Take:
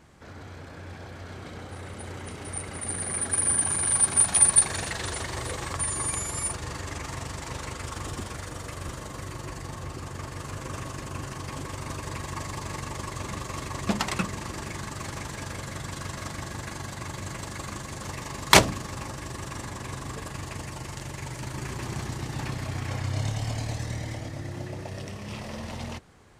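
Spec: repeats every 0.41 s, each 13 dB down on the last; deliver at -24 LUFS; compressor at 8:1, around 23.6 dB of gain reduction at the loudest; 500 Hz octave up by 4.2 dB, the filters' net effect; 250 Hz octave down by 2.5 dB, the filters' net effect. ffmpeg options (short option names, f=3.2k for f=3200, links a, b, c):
-af "equalizer=f=250:t=o:g=-6,equalizer=f=500:t=o:g=7,acompressor=threshold=-34dB:ratio=8,aecho=1:1:410|820|1230:0.224|0.0493|0.0108,volume=14dB"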